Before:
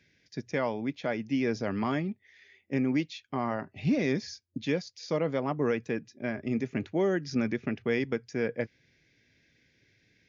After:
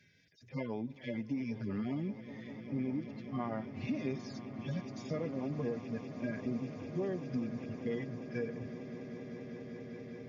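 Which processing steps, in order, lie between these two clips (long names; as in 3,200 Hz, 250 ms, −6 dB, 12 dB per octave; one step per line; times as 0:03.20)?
harmonic-percussive split with one part muted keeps harmonic
downward compressor 4 to 1, threshold −37 dBFS, peak gain reduction 12 dB
on a send: echo that builds up and dies away 198 ms, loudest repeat 8, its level −16.5 dB
on the sum: level +2 dB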